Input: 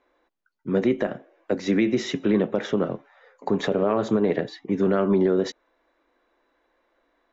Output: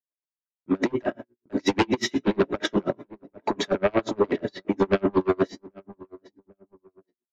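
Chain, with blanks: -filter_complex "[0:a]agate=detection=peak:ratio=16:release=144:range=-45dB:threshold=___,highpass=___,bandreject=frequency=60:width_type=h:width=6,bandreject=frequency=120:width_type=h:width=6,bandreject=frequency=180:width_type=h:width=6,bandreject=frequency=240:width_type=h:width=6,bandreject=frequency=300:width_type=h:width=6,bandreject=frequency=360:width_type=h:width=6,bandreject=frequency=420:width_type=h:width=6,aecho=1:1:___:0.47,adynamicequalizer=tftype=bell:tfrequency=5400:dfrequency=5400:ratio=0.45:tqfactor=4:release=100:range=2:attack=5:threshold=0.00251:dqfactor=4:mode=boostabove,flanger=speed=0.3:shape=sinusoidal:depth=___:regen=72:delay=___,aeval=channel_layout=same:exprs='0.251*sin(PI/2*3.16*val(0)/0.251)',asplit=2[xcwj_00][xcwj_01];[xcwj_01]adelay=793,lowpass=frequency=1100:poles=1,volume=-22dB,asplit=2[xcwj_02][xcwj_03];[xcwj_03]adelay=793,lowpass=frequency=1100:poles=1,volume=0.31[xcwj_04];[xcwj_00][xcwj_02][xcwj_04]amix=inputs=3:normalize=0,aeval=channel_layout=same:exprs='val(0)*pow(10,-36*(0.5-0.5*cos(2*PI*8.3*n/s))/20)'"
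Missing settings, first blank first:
-47dB, 43, 3.1, 5.3, 4.5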